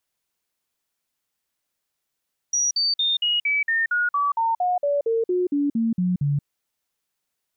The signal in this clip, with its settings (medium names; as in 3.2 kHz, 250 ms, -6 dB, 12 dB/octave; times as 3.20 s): stepped sine 5.78 kHz down, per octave 3, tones 17, 0.18 s, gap 0.05 s -18.5 dBFS